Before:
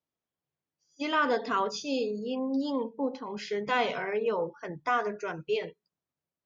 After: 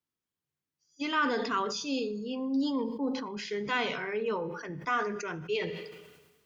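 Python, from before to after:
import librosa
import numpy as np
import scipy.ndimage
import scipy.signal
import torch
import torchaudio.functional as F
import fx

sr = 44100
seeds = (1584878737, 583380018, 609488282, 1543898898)

y = fx.peak_eq(x, sr, hz=650.0, db=-9.5, octaves=0.84)
y = fx.rev_double_slope(y, sr, seeds[0], early_s=0.61, late_s=1.9, knee_db=-24, drr_db=15.5)
y = fx.sustainer(y, sr, db_per_s=47.0)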